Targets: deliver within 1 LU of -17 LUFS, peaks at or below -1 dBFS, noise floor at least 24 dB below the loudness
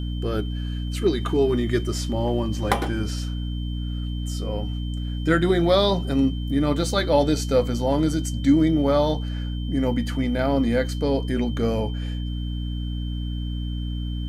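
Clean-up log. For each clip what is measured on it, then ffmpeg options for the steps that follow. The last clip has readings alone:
hum 60 Hz; harmonics up to 300 Hz; hum level -25 dBFS; steady tone 3100 Hz; tone level -42 dBFS; loudness -24.0 LUFS; peak -5.0 dBFS; loudness target -17.0 LUFS
-> -af "bandreject=f=60:t=h:w=4,bandreject=f=120:t=h:w=4,bandreject=f=180:t=h:w=4,bandreject=f=240:t=h:w=4,bandreject=f=300:t=h:w=4"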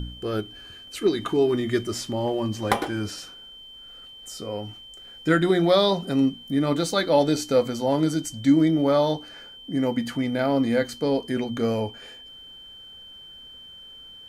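hum none; steady tone 3100 Hz; tone level -42 dBFS
-> -af "bandreject=f=3.1k:w=30"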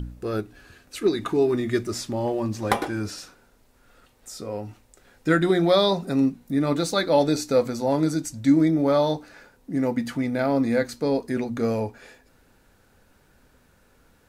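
steady tone none; loudness -24.0 LUFS; peak -4.0 dBFS; loudness target -17.0 LUFS
-> -af "volume=7dB,alimiter=limit=-1dB:level=0:latency=1"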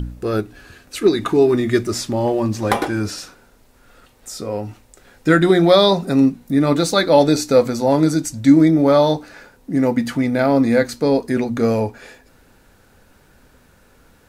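loudness -17.0 LUFS; peak -1.0 dBFS; noise floor -53 dBFS

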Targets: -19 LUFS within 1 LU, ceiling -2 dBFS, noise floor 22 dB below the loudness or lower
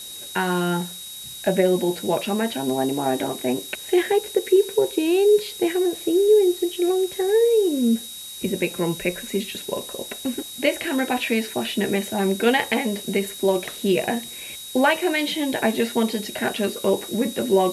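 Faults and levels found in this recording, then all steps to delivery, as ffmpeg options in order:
steady tone 3800 Hz; tone level -37 dBFS; noise floor -37 dBFS; noise floor target -45 dBFS; loudness -22.5 LUFS; peak -6.5 dBFS; loudness target -19.0 LUFS
-> -af "bandreject=f=3.8k:w=30"
-af "afftdn=nr=8:nf=-37"
-af "volume=3.5dB"

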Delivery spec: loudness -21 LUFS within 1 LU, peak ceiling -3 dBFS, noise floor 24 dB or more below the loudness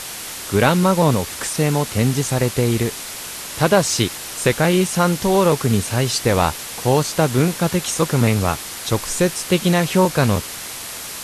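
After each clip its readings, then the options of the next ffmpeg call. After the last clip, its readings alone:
noise floor -31 dBFS; noise floor target -43 dBFS; loudness -19.0 LUFS; peak -1.0 dBFS; loudness target -21.0 LUFS
-> -af "afftdn=nr=12:nf=-31"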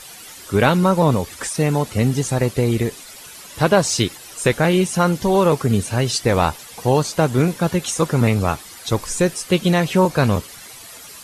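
noise floor -39 dBFS; noise floor target -43 dBFS
-> -af "afftdn=nr=6:nf=-39"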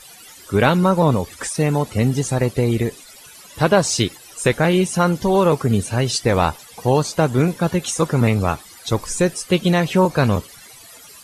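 noise floor -43 dBFS; loudness -19.0 LUFS; peak -1.5 dBFS; loudness target -21.0 LUFS
-> -af "volume=-2dB"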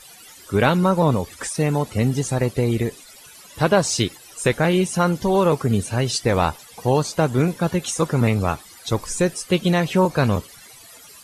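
loudness -21.0 LUFS; peak -3.5 dBFS; noise floor -45 dBFS

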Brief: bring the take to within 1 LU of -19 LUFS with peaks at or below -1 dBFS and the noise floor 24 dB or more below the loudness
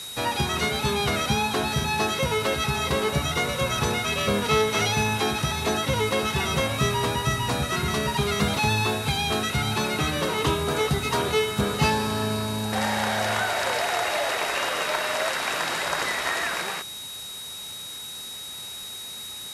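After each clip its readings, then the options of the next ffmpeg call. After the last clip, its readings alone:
steady tone 3800 Hz; tone level -36 dBFS; noise floor -37 dBFS; noise floor target -49 dBFS; loudness -25.0 LUFS; peak -10.0 dBFS; loudness target -19.0 LUFS
-> -af "bandreject=f=3.8k:w=30"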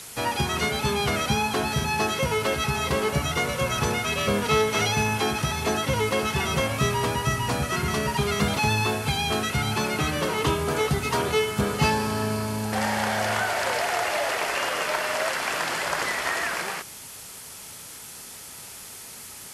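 steady tone none; noise floor -42 dBFS; noise floor target -49 dBFS
-> -af "afftdn=nr=7:nf=-42"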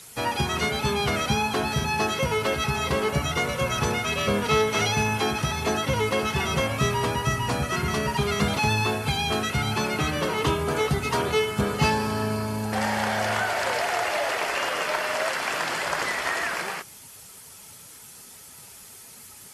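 noise floor -46 dBFS; noise floor target -49 dBFS
-> -af "afftdn=nr=6:nf=-46"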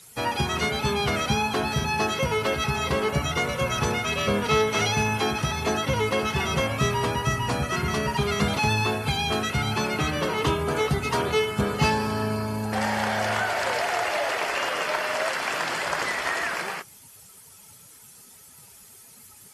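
noise floor -50 dBFS; loudness -25.0 LUFS; peak -10.5 dBFS; loudness target -19.0 LUFS
-> -af "volume=6dB"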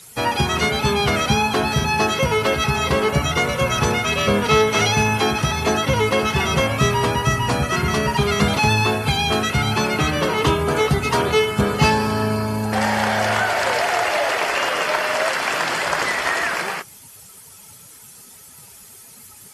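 loudness -19.0 LUFS; peak -4.5 dBFS; noise floor -44 dBFS

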